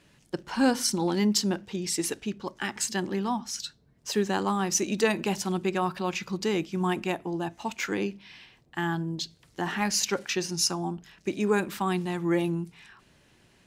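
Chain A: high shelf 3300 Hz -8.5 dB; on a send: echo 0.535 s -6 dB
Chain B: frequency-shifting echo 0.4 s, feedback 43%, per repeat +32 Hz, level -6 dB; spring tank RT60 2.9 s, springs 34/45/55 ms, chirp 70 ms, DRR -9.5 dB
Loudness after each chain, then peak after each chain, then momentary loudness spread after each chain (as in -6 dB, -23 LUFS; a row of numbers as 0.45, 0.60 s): -29.5, -18.5 LUFS; -11.0, -2.0 dBFS; 9, 8 LU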